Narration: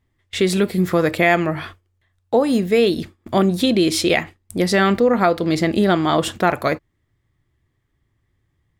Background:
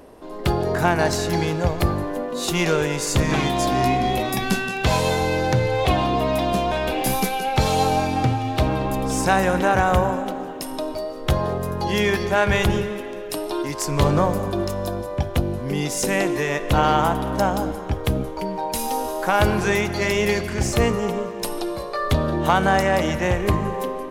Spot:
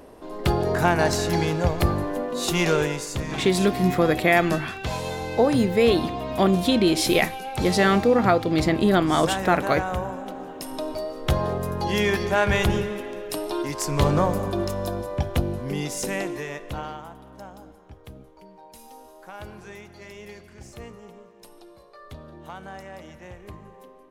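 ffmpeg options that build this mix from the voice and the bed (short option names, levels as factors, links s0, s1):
-filter_complex "[0:a]adelay=3050,volume=0.708[s0];[1:a]volume=2.11,afade=t=out:st=2.82:d=0.26:silence=0.375837,afade=t=in:st=10.13:d=0.84:silence=0.421697,afade=t=out:st=15.37:d=1.65:silence=0.105925[s1];[s0][s1]amix=inputs=2:normalize=0"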